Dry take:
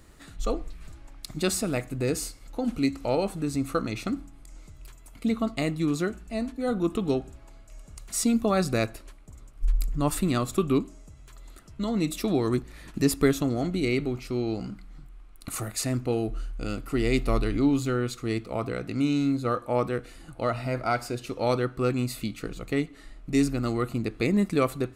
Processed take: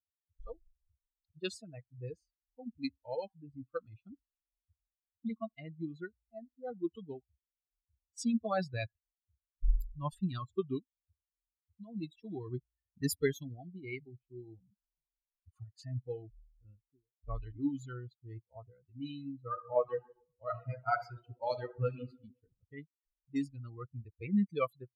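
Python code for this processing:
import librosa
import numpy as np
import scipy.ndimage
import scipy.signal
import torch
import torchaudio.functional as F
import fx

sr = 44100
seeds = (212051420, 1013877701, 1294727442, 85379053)

y = fx.studio_fade_out(x, sr, start_s=16.55, length_s=0.69)
y = fx.reverb_throw(y, sr, start_s=19.48, length_s=2.59, rt60_s=1.7, drr_db=1.5)
y = fx.bin_expand(y, sr, power=3.0)
y = fx.env_lowpass(y, sr, base_hz=510.0, full_db=-25.5)
y = fx.peak_eq(y, sr, hz=290.0, db=-5.5, octaves=0.51)
y = y * 10.0 ** (-2.0 / 20.0)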